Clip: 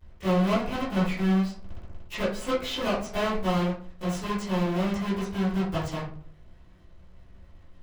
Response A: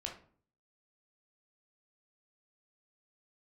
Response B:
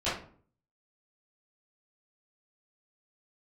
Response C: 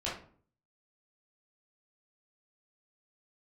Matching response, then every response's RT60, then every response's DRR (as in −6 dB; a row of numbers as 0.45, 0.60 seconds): B; 0.50, 0.50, 0.50 seconds; 0.5, −14.5, −8.0 decibels